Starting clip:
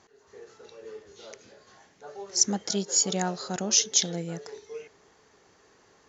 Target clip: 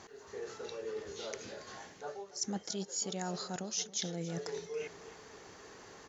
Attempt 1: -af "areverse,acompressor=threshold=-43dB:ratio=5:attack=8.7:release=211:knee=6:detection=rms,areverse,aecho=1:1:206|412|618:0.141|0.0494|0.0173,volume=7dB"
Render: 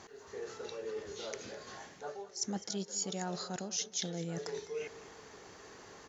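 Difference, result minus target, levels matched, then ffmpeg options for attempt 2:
echo 72 ms early
-af "areverse,acompressor=threshold=-43dB:ratio=5:attack=8.7:release=211:knee=6:detection=rms,areverse,aecho=1:1:278|556|834:0.141|0.0494|0.0173,volume=7dB"

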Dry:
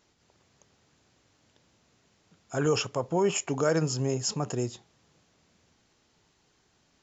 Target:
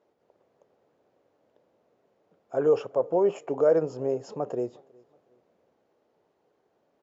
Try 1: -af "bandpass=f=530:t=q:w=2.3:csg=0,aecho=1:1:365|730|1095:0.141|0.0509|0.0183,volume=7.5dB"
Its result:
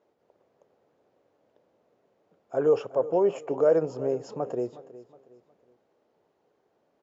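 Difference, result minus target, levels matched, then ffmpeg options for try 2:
echo-to-direct +10 dB
-af "bandpass=f=530:t=q:w=2.3:csg=0,aecho=1:1:365|730:0.0447|0.0161,volume=7.5dB"

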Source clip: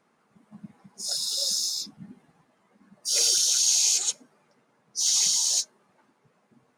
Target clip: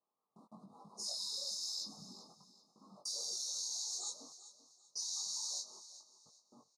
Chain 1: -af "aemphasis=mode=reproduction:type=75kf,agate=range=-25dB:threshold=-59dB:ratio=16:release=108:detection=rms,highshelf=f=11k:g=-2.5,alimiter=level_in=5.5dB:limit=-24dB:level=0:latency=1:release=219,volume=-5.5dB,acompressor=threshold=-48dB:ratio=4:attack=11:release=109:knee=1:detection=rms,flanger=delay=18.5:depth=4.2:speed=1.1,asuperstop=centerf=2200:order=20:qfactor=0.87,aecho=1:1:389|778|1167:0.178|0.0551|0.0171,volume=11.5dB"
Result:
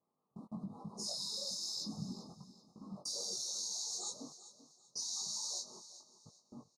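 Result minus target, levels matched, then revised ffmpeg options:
1000 Hz band +3.5 dB
-af "aemphasis=mode=reproduction:type=75kf,agate=range=-25dB:threshold=-59dB:ratio=16:release=108:detection=rms,highshelf=f=11k:g=-2.5,alimiter=level_in=5.5dB:limit=-24dB:level=0:latency=1:release=219,volume=-5.5dB,acompressor=threshold=-48dB:ratio=4:attack=11:release=109:knee=1:detection=rms,highpass=f=940:p=1,flanger=delay=18.5:depth=4.2:speed=1.1,asuperstop=centerf=2200:order=20:qfactor=0.87,aecho=1:1:389|778|1167:0.178|0.0551|0.0171,volume=11.5dB"

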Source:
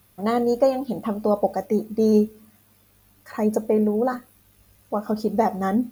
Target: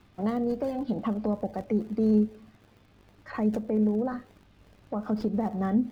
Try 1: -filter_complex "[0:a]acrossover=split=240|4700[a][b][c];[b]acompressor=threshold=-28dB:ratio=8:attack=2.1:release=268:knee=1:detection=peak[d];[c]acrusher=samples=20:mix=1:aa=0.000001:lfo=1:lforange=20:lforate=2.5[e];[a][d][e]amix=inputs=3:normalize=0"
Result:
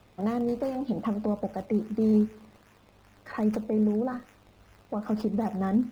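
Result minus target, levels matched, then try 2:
decimation with a swept rate: distortion -9 dB
-filter_complex "[0:a]acrossover=split=240|4700[a][b][c];[b]acompressor=threshold=-28dB:ratio=8:attack=2.1:release=268:knee=1:detection=peak[d];[c]acrusher=samples=64:mix=1:aa=0.000001:lfo=1:lforange=64:lforate=2.5[e];[a][d][e]amix=inputs=3:normalize=0"

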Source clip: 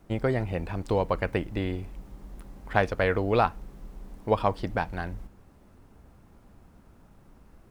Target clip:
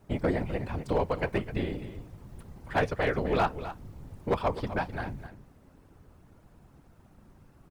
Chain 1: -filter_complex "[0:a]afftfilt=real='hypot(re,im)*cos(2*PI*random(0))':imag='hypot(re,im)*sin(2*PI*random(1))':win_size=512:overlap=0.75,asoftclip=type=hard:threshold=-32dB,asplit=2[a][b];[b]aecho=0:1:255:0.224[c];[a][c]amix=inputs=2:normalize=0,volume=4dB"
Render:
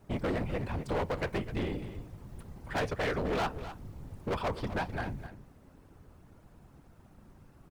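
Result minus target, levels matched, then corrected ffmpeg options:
hard clip: distortion +12 dB
-filter_complex "[0:a]afftfilt=real='hypot(re,im)*cos(2*PI*random(0))':imag='hypot(re,im)*sin(2*PI*random(1))':win_size=512:overlap=0.75,asoftclip=type=hard:threshold=-22.5dB,asplit=2[a][b];[b]aecho=0:1:255:0.224[c];[a][c]amix=inputs=2:normalize=0,volume=4dB"

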